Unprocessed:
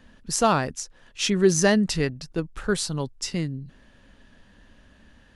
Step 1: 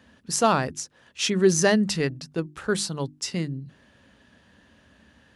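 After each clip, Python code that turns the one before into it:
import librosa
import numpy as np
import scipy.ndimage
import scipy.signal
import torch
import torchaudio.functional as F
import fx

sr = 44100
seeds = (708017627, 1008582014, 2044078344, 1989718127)

y = scipy.signal.sosfilt(scipy.signal.butter(4, 69.0, 'highpass', fs=sr, output='sos'), x)
y = fx.hum_notches(y, sr, base_hz=50, count=7)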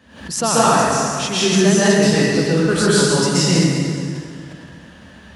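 y = fx.rider(x, sr, range_db=5, speed_s=0.5)
y = fx.rev_plate(y, sr, seeds[0], rt60_s=2.3, hf_ratio=0.8, predelay_ms=115, drr_db=-9.5)
y = fx.pre_swell(y, sr, db_per_s=90.0)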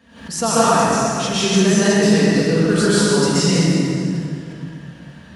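y = fx.room_shoebox(x, sr, seeds[1], volume_m3=2000.0, walls='mixed', distance_m=1.7)
y = F.gain(torch.from_numpy(y), -3.5).numpy()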